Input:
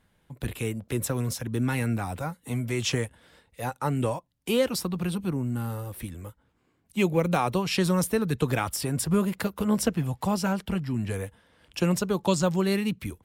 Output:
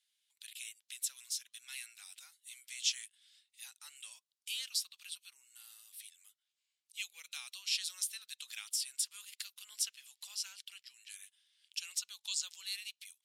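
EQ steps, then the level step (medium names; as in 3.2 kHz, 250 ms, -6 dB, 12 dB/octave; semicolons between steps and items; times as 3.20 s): ladder band-pass 4.3 kHz, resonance 25%; differentiator; +12.5 dB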